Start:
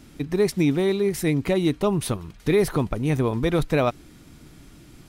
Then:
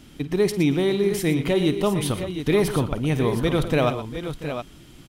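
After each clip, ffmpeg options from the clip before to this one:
ffmpeg -i in.wav -filter_complex "[0:a]equalizer=frequency=3100:width_type=o:width=0.27:gain=8.5,asplit=2[link_01][link_02];[link_02]aecho=0:1:50|117|687|715:0.168|0.224|0.15|0.355[link_03];[link_01][link_03]amix=inputs=2:normalize=0" out.wav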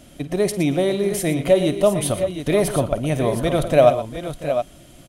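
ffmpeg -i in.wav -af "superequalizer=8b=3.98:15b=1.58:16b=2.24" out.wav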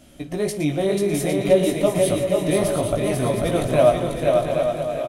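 ffmpeg -i in.wav -filter_complex "[0:a]flanger=delay=16:depth=4.5:speed=0.61,asplit=2[link_01][link_02];[link_02]aecho=0:1:490|808.5|1016|1150|1238:0.631|0.398|0.251|0.158|0.1[link_03];[link_01][link_03]amix=inputs=2:normalize=0" out.wav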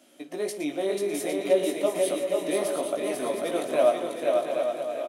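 ffmpeg -i in.wav -af "highpass=frequency=270:width=0.5412,highpass=frequency=270:width=1.3066,volume=-5.5dB" out.wav

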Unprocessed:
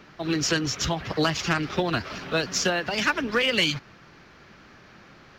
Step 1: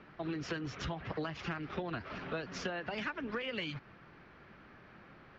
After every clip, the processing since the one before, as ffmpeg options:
ffmpeg -i in.wav -af "lowpass=2500,acompressor=threshold=-30dB:ratio=5,volume=-5.5dB" out.wav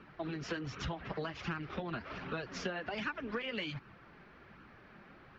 ffmpeg -i in.wav -af "flanger=delay=0.7:depth=4.4:regen=-38:speed=1.3:shape=sinusoidal,volume=3.5dB" out.wav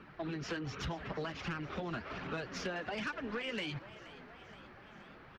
ffmpeg -i in.wav -filter_complex "[0:a]asoftclip=type=tanh:threshold=-32dB,asplit=7[link_01][link_02][link_03][link_04][link_05][link_06][link_07];[link_02]adelay=475,afreqshift=110,volume=-17dB[link_08];[link_03]adelay=950,afreqshift=220,volume=-21.3dB[link_09];[link_04]adelay=1425,afreqshift=330,volume=-25.6dB[link_10];[link_05]adelay=1900,afreqshift=440,volume=-29.9dB[link_11];[link_06]adelay=2375,afreqshift=550,volume=-34.2dB[link_12];[link_07]adelay=2850,afreqshift=660,volume=-38.5dB[link_13];[link_01][link_08][link_09][link_10][link_11][link_12][link_13]amix=inputs=7:normalize=0,volume=1.5dB" out.wav

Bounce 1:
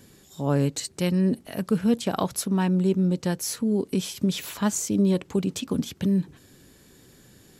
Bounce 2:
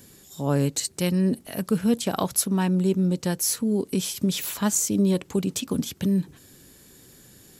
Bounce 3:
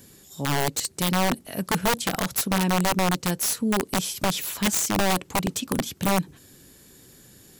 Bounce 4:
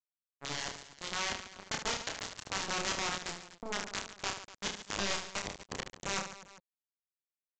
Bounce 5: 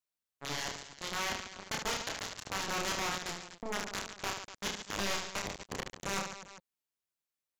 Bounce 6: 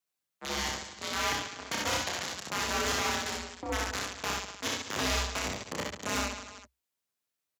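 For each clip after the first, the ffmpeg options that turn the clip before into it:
ffmpeg -i in.wav -af "highshelf=frequency=6700:gain=9.5" out.wav
ffmpeg -i in.wav -af "aeval=exprs='(mod(6.68*val(0)+1,2)-1)/6.68':channel_layout=same" out.wav
ffmpeg -i in.wav -af "aresample=16000,acrusher=bits=2:mix=0:aa=0.5,aresample=44100,aecho=1:1:30|75|142.5|243.8|395.6:0.631|0.398|0.251|0.158|0.1,volume=-7dB" out.wav
ffmpeg -i in.wav -af "asoftclip=type=tanh:threshold=-30dB,volume=3.5dB" out.wav
ffmpeg -i in.wav -af "afreqshift=63,aecho=1:1:62|72:0.708|0.266,volume=2.5dB" out.wav

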